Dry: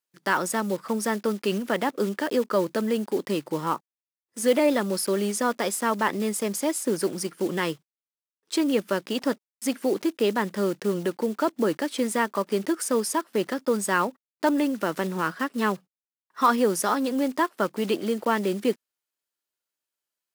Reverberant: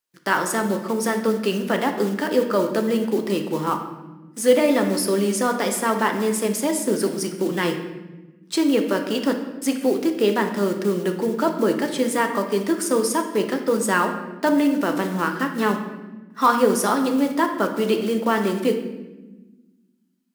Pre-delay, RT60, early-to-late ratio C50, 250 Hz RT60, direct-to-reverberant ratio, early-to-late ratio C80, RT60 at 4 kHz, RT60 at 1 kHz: 3 ms, 1.1 s, 7.5 dB, 2.0 s, 4.5 dB, 10.0 dB, 0.80 s, 1.0 s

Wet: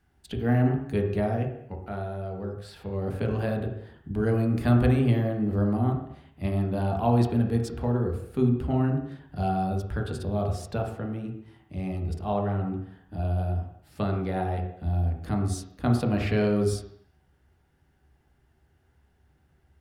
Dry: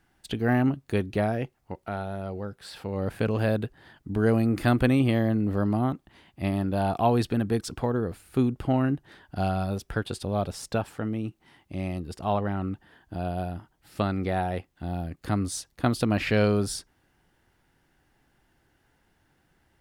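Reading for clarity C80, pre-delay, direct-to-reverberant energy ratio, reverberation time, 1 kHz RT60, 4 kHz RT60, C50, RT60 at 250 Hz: 8.0 dB, 3 ms, 1.0 dB, 0.65 s, 0.65 s, 0.70 s, 5.5 dB, 0.65 s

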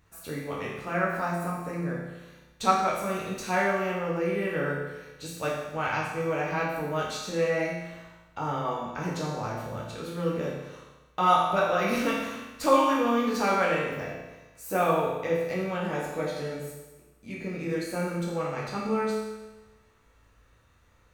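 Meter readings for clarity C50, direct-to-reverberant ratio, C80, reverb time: 1.0 dB, -5.5 dB, 3.5 dB, 1.1 s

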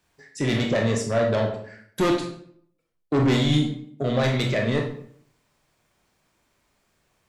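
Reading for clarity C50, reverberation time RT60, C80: 5.5 dB, 0.65 s, 10.0 dB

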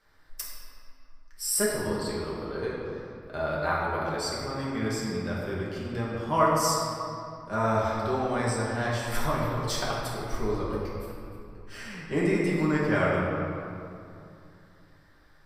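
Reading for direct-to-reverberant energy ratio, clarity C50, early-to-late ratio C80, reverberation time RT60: -6.5 dB, -1.0 dB, 0.5 dB, 2.6 s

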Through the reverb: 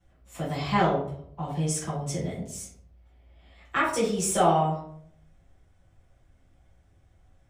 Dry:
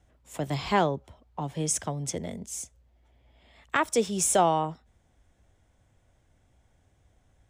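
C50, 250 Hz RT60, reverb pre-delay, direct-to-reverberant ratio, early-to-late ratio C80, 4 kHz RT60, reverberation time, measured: 5.5 dB, 0.75 s, 5 ms, -12.5 dB, 9.0 dB, 0.35 s, 0.60 s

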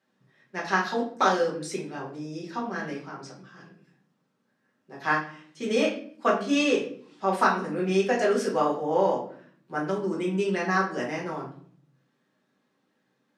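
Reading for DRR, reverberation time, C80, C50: -5.0 dB, 0.55 s, 11.5 dB, 7.0 dB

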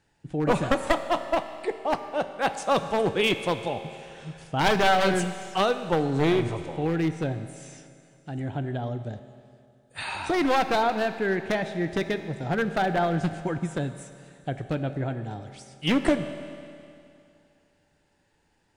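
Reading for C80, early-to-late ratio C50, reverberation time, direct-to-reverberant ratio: 11.0 dB, 10.0 dB, 2.5 s, 9.0 dB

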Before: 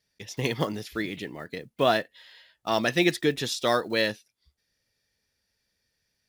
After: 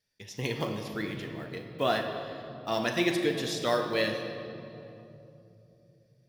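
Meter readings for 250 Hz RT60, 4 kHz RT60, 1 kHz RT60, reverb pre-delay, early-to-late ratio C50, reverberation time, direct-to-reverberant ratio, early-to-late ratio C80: 4.5 s, 1.9 s, 2.6 s, 9 ms, 5.5 dB, 3.0 s, 3.0 dB, 6.5 dB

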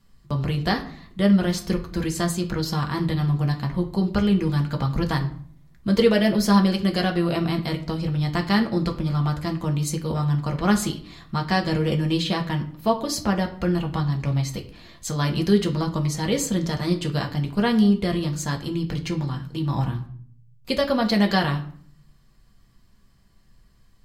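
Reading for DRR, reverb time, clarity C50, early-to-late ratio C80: 2.0 dB, 0.55 s, 12.5 dB, 16.0 dB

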